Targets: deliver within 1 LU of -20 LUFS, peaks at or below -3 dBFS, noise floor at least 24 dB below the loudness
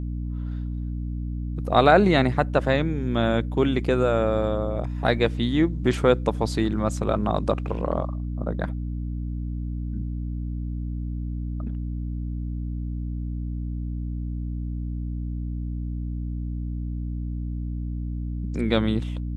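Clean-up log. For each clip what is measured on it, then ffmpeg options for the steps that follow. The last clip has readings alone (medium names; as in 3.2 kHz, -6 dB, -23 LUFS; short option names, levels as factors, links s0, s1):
hum 60 Hz; highest harmonic 300 Hz; hum level -27 dBFS; loudness -26.0 LUFS; peak level -3.0 dBFS; loudness target -20.0 LUFS
-> -af "bandreject=f=60:t=h:w=6,bandreject=f=120:t=h:w=6,bandreject=f=180:t=h:w=6,bandreject=f=240:t=h:w=6,bandreject=f=300:t=h:w=6"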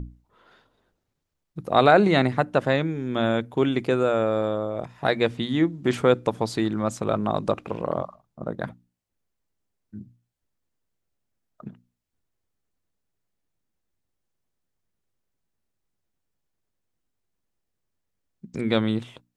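hum not found; loudness -23.5 LUFS; peak level -3.5 dBFS; loudness target -20.0 LUFS
-> -af "volume=1.5,alimiter=limit=0.708:level=0:latency=1"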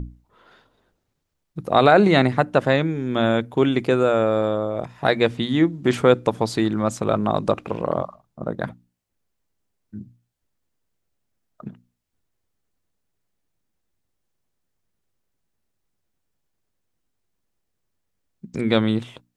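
loudness -20.5 LUFS; peak level -3.0 dBFS; noise floor -76 dBFS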